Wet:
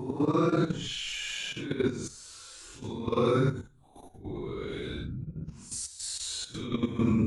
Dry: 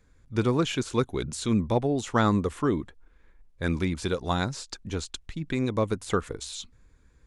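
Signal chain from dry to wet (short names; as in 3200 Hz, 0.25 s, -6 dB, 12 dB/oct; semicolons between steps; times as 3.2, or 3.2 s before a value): Paulstretch 7.2×, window 0.05 s, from 0.54; level quantiser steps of 12 dB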